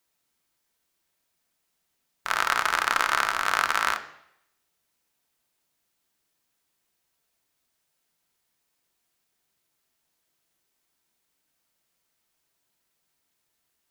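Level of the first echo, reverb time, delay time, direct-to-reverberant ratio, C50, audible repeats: no echo audible, 0.75 s, no echo audible, 5.5 dB, 12.5 dB, no echo audible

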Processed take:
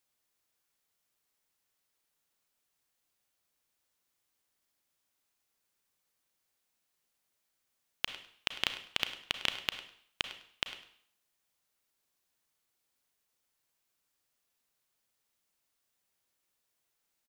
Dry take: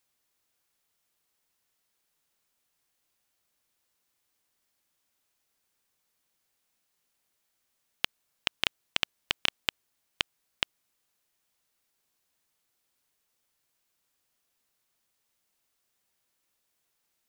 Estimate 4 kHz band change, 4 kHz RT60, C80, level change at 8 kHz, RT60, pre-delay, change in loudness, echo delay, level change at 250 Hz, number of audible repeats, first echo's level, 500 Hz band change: −3.5 dB, 0.60 s, 11.0 dB, −3.5 dB, 0.60 s, 32 ms, −3.5 dB, 102 ms, −3.5 dB, 2, −14.5 dB, −3.5 dB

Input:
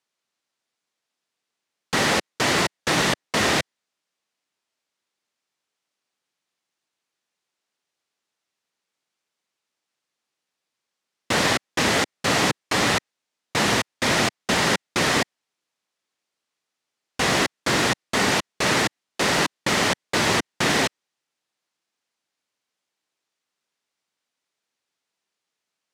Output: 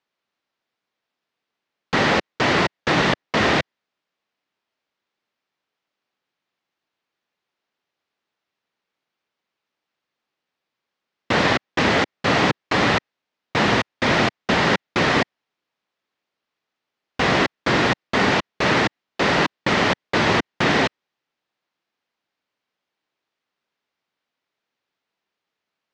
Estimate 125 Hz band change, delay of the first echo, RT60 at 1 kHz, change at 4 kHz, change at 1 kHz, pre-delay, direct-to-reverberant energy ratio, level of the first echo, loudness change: +4.0 dB, no echo audible, no reverb audible, −1.0 dB, +3.0 dB, no reverb audible, no reverb audible, no echo audible, +1.5 dB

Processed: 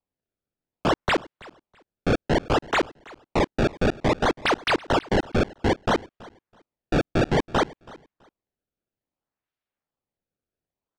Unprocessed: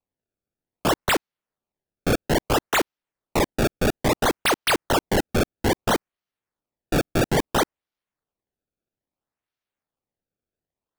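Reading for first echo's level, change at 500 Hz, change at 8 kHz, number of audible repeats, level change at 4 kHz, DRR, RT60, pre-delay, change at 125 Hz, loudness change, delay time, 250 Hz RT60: −22.0 dB, −0.5 dB, −11.5 dB, 1, −3.5 dB, no reverb audible, no reverb audible, no reverb audible, 0.0 dB, −1.0 dB, 328 ms, no reverb audible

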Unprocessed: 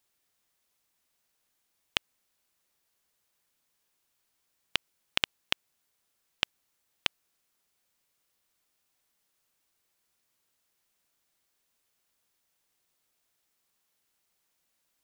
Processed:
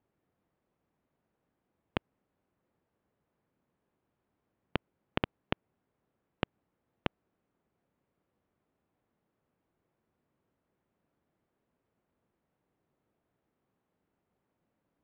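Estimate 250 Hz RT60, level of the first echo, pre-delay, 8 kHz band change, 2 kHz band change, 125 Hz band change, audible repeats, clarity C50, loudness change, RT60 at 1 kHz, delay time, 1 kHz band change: no reverb audible, no echo audible, no reverb audible, below −25 dB, −7.0 dB, +12.0 dB, no echo audible, no reverb audible, −6.0 dB, no reverb audible, no echo audible, +2.0 dB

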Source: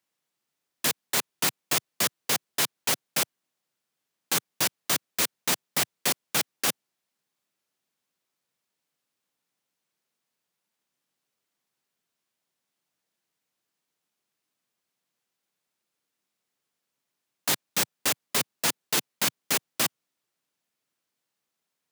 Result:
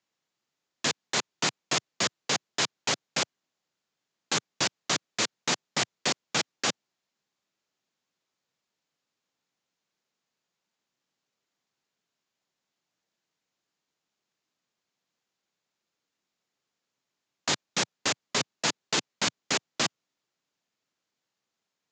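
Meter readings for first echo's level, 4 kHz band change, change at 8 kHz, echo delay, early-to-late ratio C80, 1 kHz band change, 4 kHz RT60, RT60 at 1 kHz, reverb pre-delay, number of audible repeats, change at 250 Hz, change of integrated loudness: no echo audible, +0.5 dB, −3.0 dB, no echo audible, no reverb audible, +0.5 dB, no reverb audible, no reverb audible, no reverb audible, no echo audible, +1.0 dB, −2.5 dB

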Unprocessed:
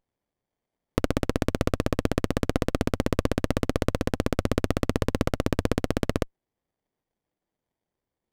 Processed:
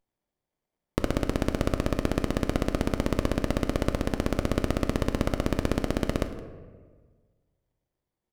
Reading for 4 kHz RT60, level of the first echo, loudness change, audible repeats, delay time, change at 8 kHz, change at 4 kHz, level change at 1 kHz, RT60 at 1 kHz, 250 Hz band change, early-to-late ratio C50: 0.75 s, −18.5 dB, −1.5 dB, 1, 168 ms, −1.5 dB, −1.5 dB, −1.0 dB, 1.4 s, −1.0 dB, 9.5 dB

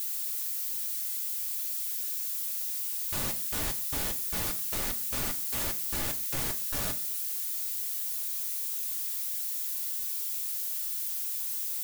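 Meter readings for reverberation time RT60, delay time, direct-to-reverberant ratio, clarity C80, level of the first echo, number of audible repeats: 0.40 s, no echo audible, 5.0 dB, 20.5 dB, no echo audible, no echo audible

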